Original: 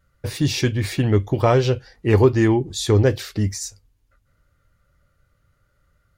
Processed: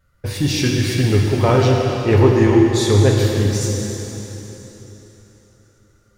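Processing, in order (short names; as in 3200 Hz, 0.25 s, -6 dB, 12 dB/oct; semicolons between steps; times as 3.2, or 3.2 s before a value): in parallel at -4 dB: soft clip -13.5 dBFS, distortion -13 dB; on the sum: plate-style reverb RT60 3.7 s, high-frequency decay 0.95×, DRR -1.5 dB; gain -3 dB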